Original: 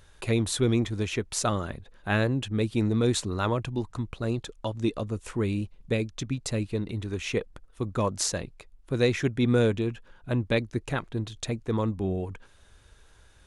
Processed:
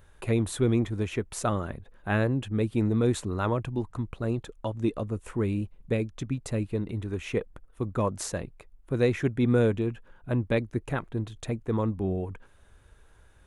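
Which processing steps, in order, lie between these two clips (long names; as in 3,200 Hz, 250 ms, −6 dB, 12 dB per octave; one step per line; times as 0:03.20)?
parametric band 4,900 Hz −10.5 dB 1.6 octaves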